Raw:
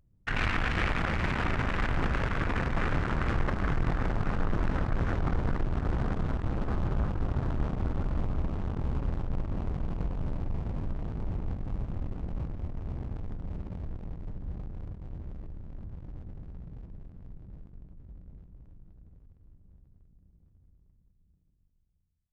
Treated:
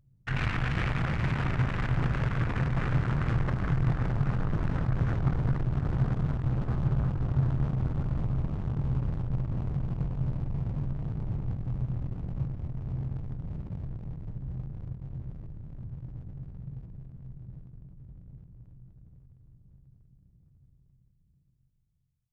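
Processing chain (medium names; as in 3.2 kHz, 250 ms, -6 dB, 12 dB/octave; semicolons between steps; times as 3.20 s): peaking EQ 130 Hz +14.5 dB 0.61 oct; trim -3.5 dB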